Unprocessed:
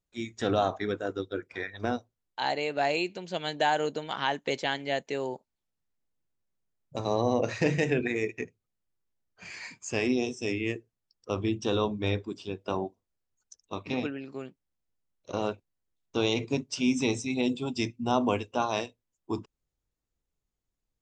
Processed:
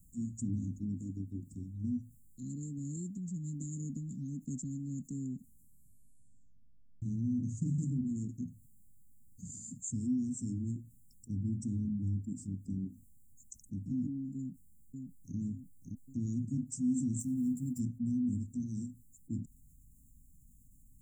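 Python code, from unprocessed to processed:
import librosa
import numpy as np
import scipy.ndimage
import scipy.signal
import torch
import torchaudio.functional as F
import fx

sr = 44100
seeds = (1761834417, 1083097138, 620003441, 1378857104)

y = fx.echo_throw(x, sr, start_s=14.36, length_s=1.01, ms=570, feedback_pct=35, wet_db=-9.0)
y = fx.law_mismatch(y, sr, coded='A', at=(17.19, 17.79), fade=0.02)
y = fx.edit(y, sr, fx.tape_stop(start_s=5.34, length_s=1.68), tone=tone)
y = scipy.signal.sosfilt(scipy.signal.cheby1(5, 1.0, [260.0, 7300.0], 'bandstop', fs=sr, output='sos'), y)
y = fx.env_flatten(y, sr, amount_pct=50)
y = F.gain(torch.from_numpy(y), -5.5).numpy()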